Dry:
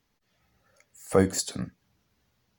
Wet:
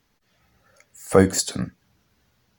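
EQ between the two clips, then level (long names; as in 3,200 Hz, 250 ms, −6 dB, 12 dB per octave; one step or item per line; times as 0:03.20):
parametric band 1,500 Hz +2.5 dB 0.3 octaves
+6.0 dB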